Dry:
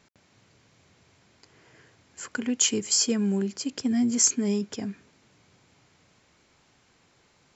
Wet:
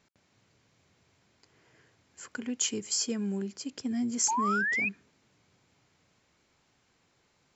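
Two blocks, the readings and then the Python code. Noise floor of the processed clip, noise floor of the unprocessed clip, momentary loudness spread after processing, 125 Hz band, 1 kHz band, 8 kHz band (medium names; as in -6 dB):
-71 dBFS, -64 dBFS, 11 LU, -7.0 dB, +12.5 dB, no reading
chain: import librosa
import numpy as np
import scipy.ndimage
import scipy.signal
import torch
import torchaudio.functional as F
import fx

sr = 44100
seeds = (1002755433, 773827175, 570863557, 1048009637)

y = fx.spec_paint(x, sr, seeds[0], shape='rise', start_s=4.28, length_s=0.61, low_hz=840.0, high_hz=2600.0, level_db=-22.0)
y = F.gain(torch.from_numpy(y), -7.0).numpy()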